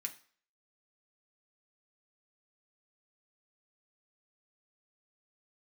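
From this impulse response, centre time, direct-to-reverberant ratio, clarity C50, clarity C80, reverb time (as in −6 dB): 8 ms, 2.0 dB, 14.5 dB, 18.5 dB, 0.45 s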